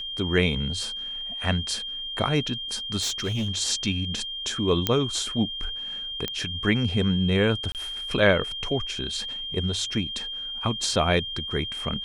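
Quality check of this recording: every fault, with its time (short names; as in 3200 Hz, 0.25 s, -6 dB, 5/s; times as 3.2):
tone 3200 Hz -31 dBFS
3.01–3.49 clipped -23 dBFS
4.87 pop -6 dBFS
6.28 pop -13 dBFS
7.72–7.75 gap 28 ms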